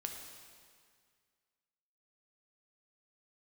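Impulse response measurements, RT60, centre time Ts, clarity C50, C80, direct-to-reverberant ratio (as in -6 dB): 2.0 s, 56 ms, 4.0 dB, 5.5 dB, 2.5 dB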